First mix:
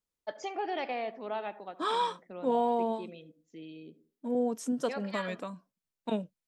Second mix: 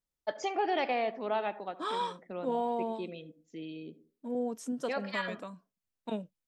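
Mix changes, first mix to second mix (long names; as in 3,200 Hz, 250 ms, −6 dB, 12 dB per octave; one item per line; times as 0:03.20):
first voice +4.0 dB
second voice −4.0 dB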